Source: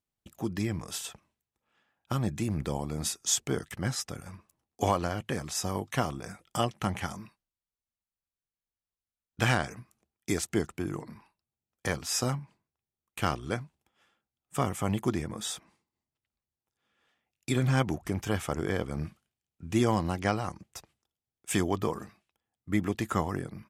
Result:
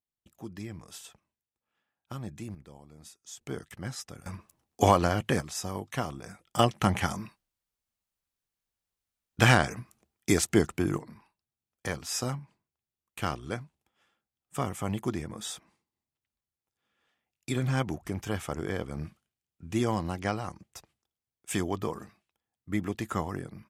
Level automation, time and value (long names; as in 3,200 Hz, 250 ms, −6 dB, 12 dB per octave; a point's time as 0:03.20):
−9 dB
from 0:02.55 −18.5 dB
from 0:03.41 −6 dB
from 0:04.26 +5.5 dB
from 0:05.41 −3 dB
from 0:06.59 +5.5 dB
from 0:10.98 −2.5 dB